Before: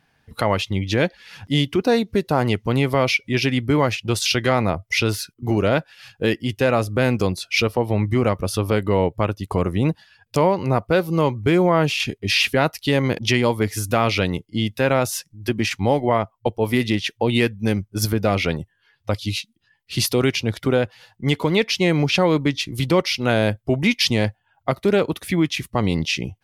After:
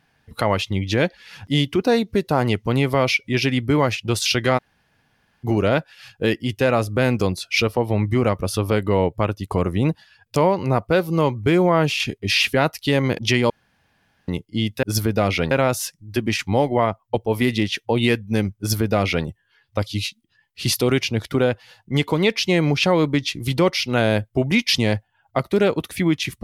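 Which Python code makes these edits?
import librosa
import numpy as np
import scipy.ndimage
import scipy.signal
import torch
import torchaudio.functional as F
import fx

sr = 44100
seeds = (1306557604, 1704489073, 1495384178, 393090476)

y = fx.edit(x, sr, fx.room_tone_fill(start_s=4.58, length_s=0.86, crossfade_s=0.02),
    fx.room_tone_fill(start_s=13.5, length_s=0.78),
    fx.duplicate(start_s=17.9, length_s=0.68, to_s=14.83), tone=tone)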